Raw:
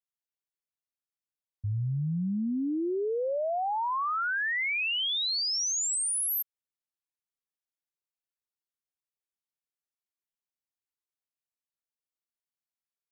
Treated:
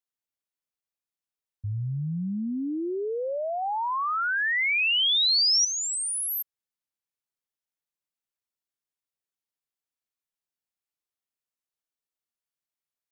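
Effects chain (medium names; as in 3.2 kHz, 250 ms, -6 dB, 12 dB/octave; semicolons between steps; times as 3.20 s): 3.62–5.65 s: treble shelf 2.1 kHz +9.5 dB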